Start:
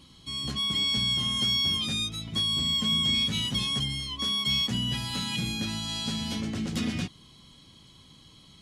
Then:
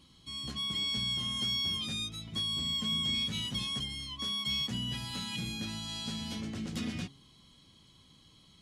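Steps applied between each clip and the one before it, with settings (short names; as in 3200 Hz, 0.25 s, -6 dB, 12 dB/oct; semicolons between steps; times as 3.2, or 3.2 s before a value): de-hum 136.5 Hz, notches 7; gain -6.5 dB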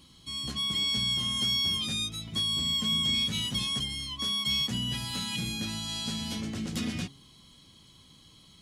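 high shelf 7300 Hz +6.5 dB; gain +3.5 dB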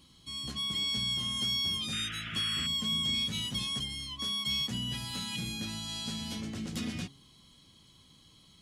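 painted sound noise, 1.92–2.67, 1200–3500 Hz -38 dBFS; gain -3.5 dB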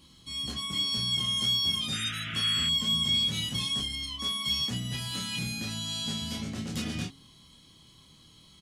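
doubler 26 ms -2.5 dB; gain +1.5 dB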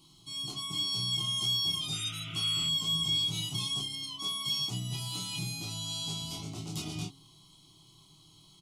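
fixed phaser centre 340 Hz, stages 8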